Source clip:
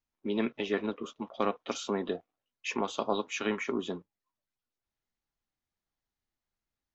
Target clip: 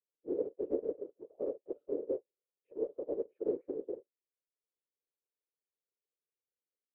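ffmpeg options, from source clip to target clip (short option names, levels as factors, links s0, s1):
-af "asuperpass=centerf=450:order=4:qfactor=5.3,afftfilt=real='hypot(re,im)*cos(2*PI*random(0))':imag='hypot(re,im)*sin(2*PI*random(1))':win_size=512:overlap=0.75,volume=2.66"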